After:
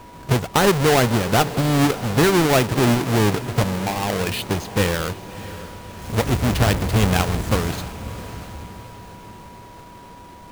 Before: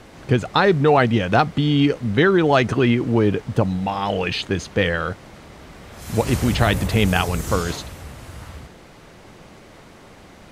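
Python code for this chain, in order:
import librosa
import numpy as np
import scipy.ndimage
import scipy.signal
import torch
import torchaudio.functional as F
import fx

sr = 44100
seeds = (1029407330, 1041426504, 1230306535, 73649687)

p1 = fx.halfwave_hold(x, sr)
p2 = p1 + 10.0 ** (-38.0 / 20.0) * np.sin(2.0 * np.pi * 970.0 * np.arange(len(p1)) / sr)
p3 = p2 + fx.echo_diffused(p2, sr, ms=628, feedback_pct=49, wet_db=-14.5, dry=0)
y = F.gain(torch.from_numpy(p3), -5.0).numpy()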